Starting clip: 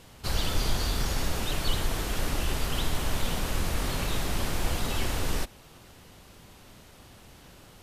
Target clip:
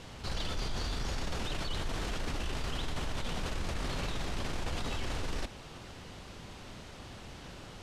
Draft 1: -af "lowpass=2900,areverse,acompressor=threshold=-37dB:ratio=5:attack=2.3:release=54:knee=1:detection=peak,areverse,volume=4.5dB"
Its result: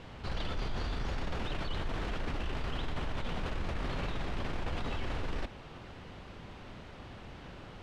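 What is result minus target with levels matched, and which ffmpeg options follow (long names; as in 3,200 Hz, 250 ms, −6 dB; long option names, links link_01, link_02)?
8,000 Hz band −11.0 dB
-af "lowpass=6500,areverse,acompressor=threshold=-37dB:ratio=5:attack=2.3:release=54:knee=1:detection=peak,areverse,volume=4.5dB"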